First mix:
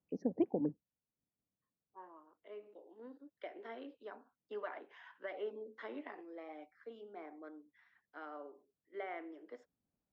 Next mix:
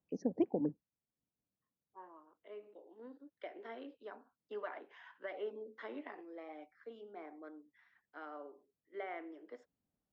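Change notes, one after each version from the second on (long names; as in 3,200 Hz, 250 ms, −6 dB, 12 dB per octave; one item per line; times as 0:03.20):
first voice: remove high-frequency loss of the air 160 metres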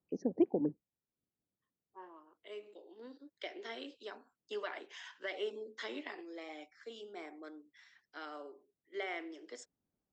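second voice: remove low-pass filter 1,400 Hz 12 dB per octave
master: add parametric band 370 Hz +5.5 dB 0.36 octaves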